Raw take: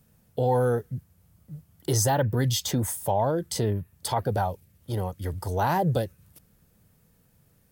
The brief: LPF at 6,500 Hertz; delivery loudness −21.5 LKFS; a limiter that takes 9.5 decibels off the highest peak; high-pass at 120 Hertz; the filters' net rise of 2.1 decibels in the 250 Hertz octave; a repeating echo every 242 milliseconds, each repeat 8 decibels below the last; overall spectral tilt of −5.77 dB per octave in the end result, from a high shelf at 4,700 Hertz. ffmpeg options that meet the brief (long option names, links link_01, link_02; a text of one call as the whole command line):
ffmpeg -i in.wav -af "highpass=120,lowpass=6500,equalizer=frequency=250:width_type=o:gain=3.5,highshelf=frequency=4700:gain=-7.5,alimiter=limit=-22dB:level=0:latency=1,aecho=1:1:242|484|726|968|1210:0.398|0.159|0.0637|0.0255|0.0102,volume=11dB" out.wav